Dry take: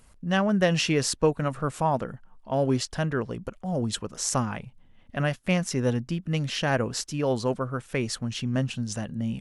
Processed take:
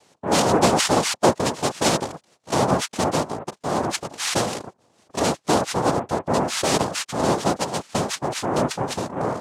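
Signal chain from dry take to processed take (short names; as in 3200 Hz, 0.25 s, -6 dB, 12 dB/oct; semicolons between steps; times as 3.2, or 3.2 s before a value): noise vocoder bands 2; gain +4.5 dB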